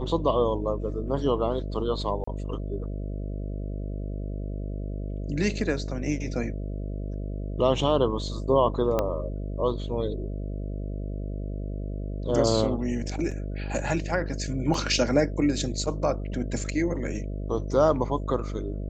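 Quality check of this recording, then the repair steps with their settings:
buzz 50 Hz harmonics 13 -32 dBFS
2.24–2.27 s: dropout 34 ms
8.99 s: pop -12 dBFS
13.31 s: dropout 4.9 ms
14.74 s: dropout 2.7 ms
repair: de-click; de-hum 50 Hz, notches 13; interpolate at 2.24 s, 34 ms; interpolate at 13.31 s, 4.9 ms; interpolate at 14.74 s, 2.7 ms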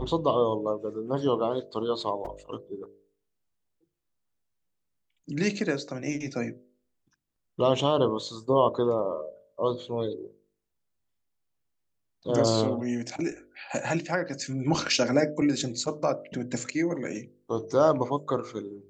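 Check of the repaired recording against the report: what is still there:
8.99 s: pop

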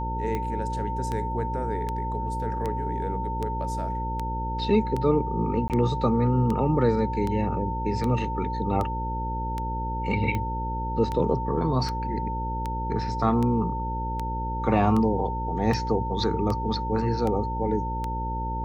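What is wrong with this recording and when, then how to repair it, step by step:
buzz 60 Hz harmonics 9 -31 dBFS
tick 78 rpm -17 dBFS
whine 900 Hz -30 dBFS
5.68–5.70 s: dropout 18 ms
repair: de-click; de-hum 60 Hz, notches 9; band-stop 900 Hz, Q 30; interpolate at 5.68 s, 18 ms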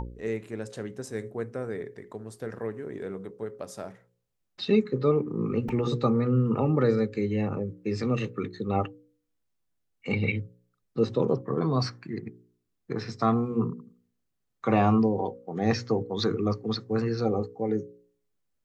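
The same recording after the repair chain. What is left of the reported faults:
nothing left

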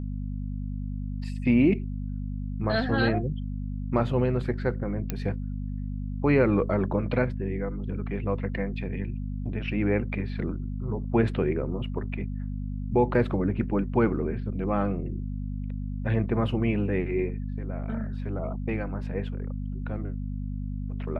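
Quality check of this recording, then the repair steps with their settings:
hum 50 Hz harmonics 5 -32 dBFS
5.10 s: pop -14 dBFS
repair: de-click; de-hum 50 Hz, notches 5

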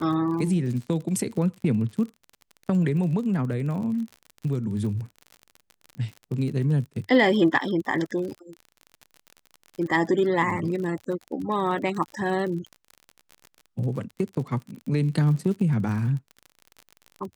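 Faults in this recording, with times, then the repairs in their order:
crackle 42 per s -33 dBFS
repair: de-click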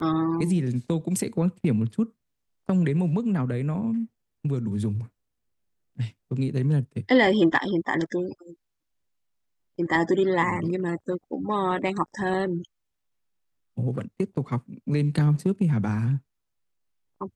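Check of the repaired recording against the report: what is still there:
nothing left

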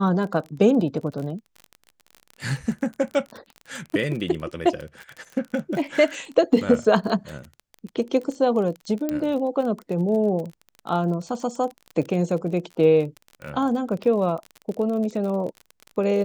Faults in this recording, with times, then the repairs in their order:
crackle 32 per s -30 dBFS
9.09 s: pop -13 dBFS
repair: de-click

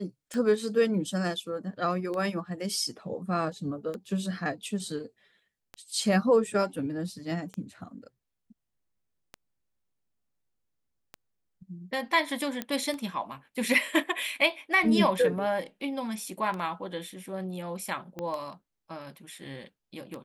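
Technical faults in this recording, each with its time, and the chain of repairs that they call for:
tick 33 1/3 rpm -23 dBFS
12.62 s: pop -16 dBFS
18.19 s: pop -22 dBFS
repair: de-click

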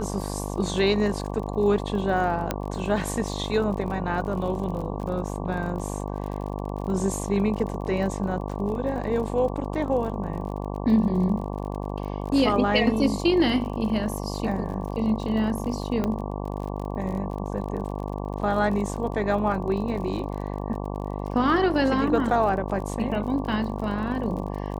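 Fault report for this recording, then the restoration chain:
buzz 50 Hz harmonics 23 -31 dBFS
crackle 40 per s -34 dBFS
2.51 s: pop -10 dBFS
16.04 s: pop -14 dBFS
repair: de-click; de-hum 50 Hz, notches 23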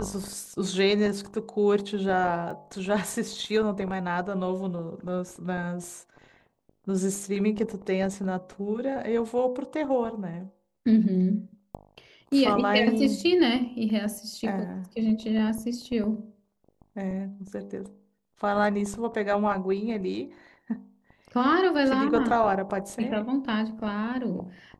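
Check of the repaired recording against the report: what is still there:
2.51 s: pop

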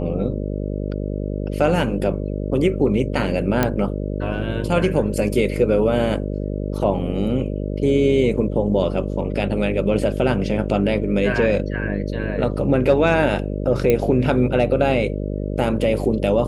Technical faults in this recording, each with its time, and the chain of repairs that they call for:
buzz 50 Hz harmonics 12 -25 dBFS
3.63 s: pop -4 dBFS
13.90 s: pop -6 dBFS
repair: de-click; de-hum 50 Hz, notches 12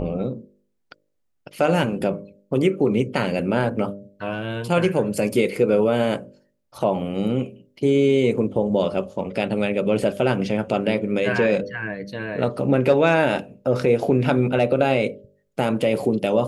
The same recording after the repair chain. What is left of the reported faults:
nothing left

